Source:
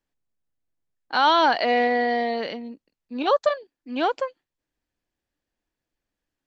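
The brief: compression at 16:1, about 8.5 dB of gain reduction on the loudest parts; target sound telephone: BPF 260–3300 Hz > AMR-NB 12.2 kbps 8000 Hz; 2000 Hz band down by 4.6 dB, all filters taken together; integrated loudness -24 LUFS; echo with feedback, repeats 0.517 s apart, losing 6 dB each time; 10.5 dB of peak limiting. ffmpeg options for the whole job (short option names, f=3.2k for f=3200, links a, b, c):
-af "equalizer=f=2k:t=o:g=-5.5,acompressor=threshold=-23dB:ratio=16,alimiter=limit=-24dB:level=0:latency=1,highpass=260,lowpass=3.3k,aecho=1:1:517|1034|1551|2068|2585|3102:0.501|0.251|0.125|0.0626|0.0313|0.0157,volume=10.5dB" -ar 8000 -c:a libopencore_amrnb -b:a 12200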